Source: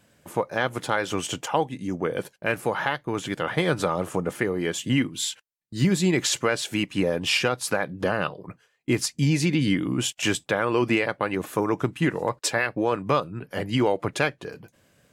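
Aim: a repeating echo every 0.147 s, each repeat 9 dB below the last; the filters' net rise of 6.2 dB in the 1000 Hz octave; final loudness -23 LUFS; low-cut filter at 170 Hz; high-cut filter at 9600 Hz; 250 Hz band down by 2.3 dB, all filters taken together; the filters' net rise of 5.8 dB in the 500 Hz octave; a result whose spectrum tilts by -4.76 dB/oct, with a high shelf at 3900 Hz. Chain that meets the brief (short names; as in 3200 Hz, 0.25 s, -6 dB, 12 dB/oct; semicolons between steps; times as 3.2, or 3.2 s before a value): HPF 170 Hz; LPF 9600 Hz; bell 250 Hz -5.5 dB; bell 500 Hz +7 dB; bell 1000 Hz +6.5 dB; high shelf 3900 Hz -7.5 dB; feedback echo 0.147 s, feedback 35%, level -9 dB; gain -0.5 dB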